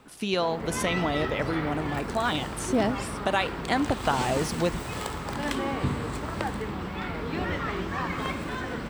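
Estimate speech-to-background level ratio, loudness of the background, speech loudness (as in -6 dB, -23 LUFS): 3.5 dB, -32.0 LUFS, -28.5 LUFS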